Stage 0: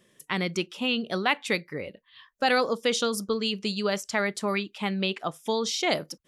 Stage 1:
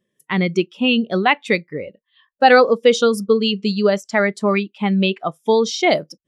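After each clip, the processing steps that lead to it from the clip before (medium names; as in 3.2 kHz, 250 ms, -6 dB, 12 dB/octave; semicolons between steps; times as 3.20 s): spectral contrast expander 1.5:1; trim +8 dB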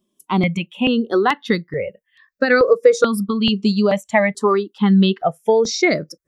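dynamic bell 4.1 kHz, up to -4 dB, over -34 dBFS, Q 0.75; compression, threshold -14 dBFS, peak gain reduction 7.5 dB; stepped phaser 2.3 Hz 490–3100 Hz; trim +7 dB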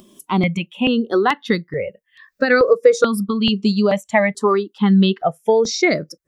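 upward compressor, threshold -32 dBFS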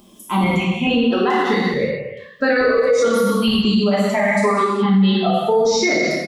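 echo from a far wall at 67 m, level -29 dB; gated-style reverb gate 450 ms falling, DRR -7.5 dB; loudness maximiser +3.5 dB; trim -7.5 dB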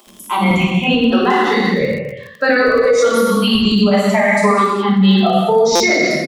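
crackle 40 per s -31 dBFS; bands offset in time highs, lows 70 ms, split 350 Hz; buffer glitch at 5.75 s, samples 256, times 8; trim +4.5 dB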